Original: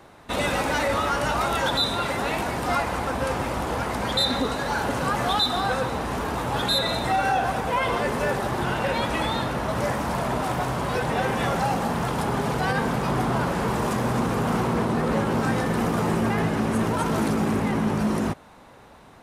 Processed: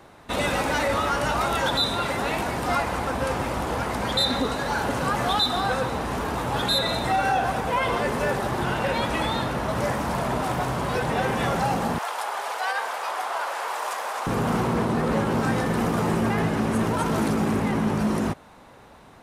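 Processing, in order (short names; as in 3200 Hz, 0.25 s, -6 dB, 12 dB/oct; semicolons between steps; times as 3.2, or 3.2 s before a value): 11.98–14.27 HPF 630 Hz 24 dB/oct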